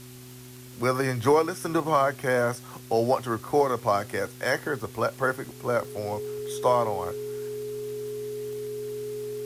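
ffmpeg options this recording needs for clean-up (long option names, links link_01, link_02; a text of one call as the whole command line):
ffmpeg -i in.wav -af "adeclick=threshold=4,bandreject=frequency=125.3:width_type=h:width=4,bandreject=frequency=250.6:width_type=h:width=4,bandreject=frequency=375.9:width_type=h:width=4,bandreject=frequency=420:width=30,afwtdn=0.0035" out.wav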